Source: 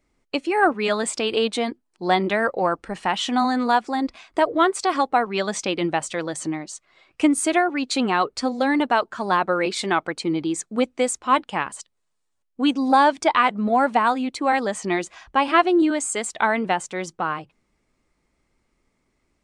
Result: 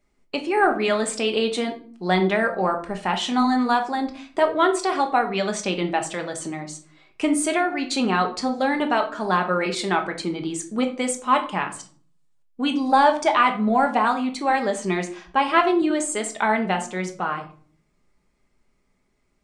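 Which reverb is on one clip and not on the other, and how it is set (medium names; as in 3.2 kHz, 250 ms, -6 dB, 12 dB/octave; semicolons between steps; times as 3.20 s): simulated room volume 420 m³, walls furnished, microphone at 1.3 m; trim -2 dB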